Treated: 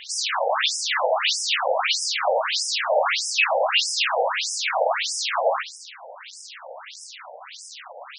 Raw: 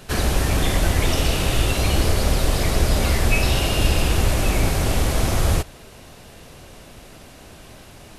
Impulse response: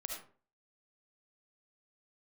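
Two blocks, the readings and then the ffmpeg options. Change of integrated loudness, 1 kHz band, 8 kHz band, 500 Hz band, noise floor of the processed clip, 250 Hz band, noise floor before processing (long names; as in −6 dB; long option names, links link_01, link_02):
−1.0 dB, +5.0 dB, 0.0 dB, +2.0 dB, −43 dBFS, below −40 dB, −44 dBFS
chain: -filter_complex "[0:a]equalizer=frequency=8900:width_type=o:width=0.73:gain=-6,acrusher=bits=6:mix=0:aa=0.000001,asplit=2[link_01][link_02];[1:a]atrim=start_sample=2205[link_03];[link_02][link_03]afir=irnorm=-1:irlink=0,volume=-4dB[link_04];[link_01][link_04]amix=inputs=2:normalize=0,afftfilt=real='re*between(b*sr/1024,630*pow(7100/630,0.5+0.5*sin(2*PI*1.6*pts/sr))/1.41,630*pow(7100/630,0.5+0.5*sin(2*PI*1.6*pts/sr))*1.41)':imag='im*between(b*sr/1024,630*pow(7100/630,0.5+0.5*sin(2*PI*1.6*pts/sr))/1.41,630*pow(7100/630,0.5+0.5*sin(2*PI*1.6*pts/sr))*1.41)':win_size=1024:overlap=0.75,volume=7.5dB"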